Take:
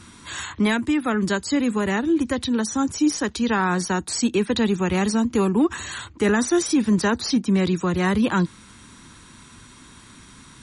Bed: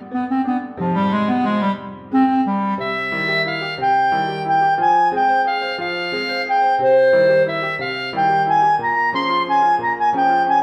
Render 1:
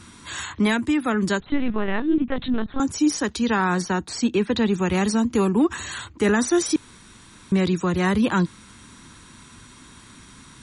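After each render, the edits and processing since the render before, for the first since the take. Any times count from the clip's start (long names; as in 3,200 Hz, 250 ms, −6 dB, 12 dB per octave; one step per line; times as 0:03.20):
0:01.40–0:02.80: linear-prediction vocoder at 8 kHz pitch kept
0:03.82–0:04.73: high-frequency loss of the air 78 metres
0:06.76–0:07.52: fill with room tone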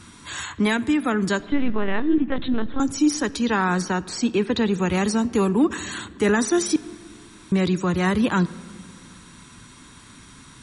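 rectangular room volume 3,800 cubic metres, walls mixed, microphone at 0.34 metres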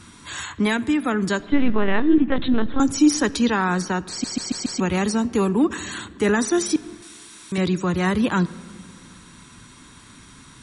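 0:01.53–0:03.50: clip gain +3.5 dB
0:04.10: stutter in place 0.14 s, 5 plays
0:07.02–0:07.58: spectral tilt +3 dB per octave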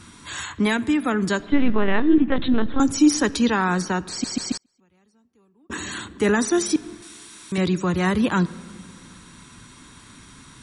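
0:04.57–0:05.70: gate with flip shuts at −25 dBFS, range −40 dB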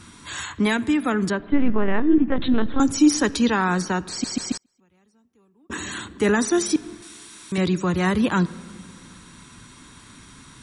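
0:01.30–0:02.41: high-frequency loss of the air 420 metres
0:04.36–0:06.05: notch filter 4,500 Hz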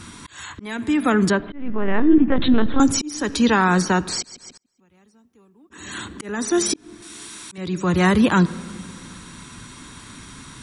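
in parallel at −0.5 dB: brickwall limiter −16 dBFS, peak gain reduction 9 dB
on the sum: volume swells 501 ms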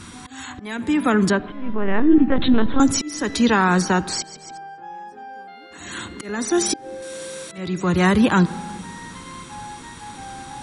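mix in bed −21.5 dB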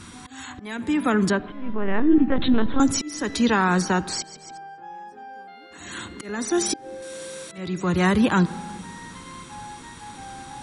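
level −3 dB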